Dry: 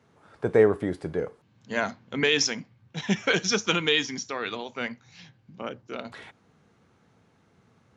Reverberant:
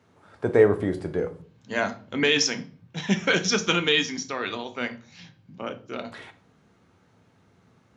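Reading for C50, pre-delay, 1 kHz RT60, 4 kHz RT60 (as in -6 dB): 16.0 dB, 3 ms, 0.40 s, 0.35 s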